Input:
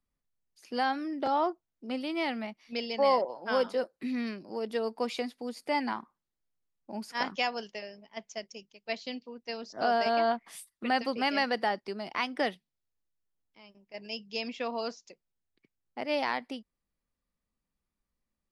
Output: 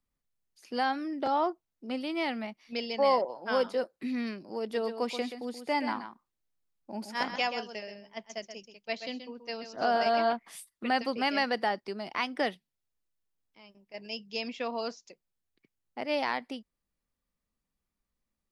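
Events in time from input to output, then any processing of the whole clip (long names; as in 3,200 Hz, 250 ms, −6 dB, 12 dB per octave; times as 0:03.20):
0:04.61–0:10.33: single-tap delay 129 ms −9.5 dB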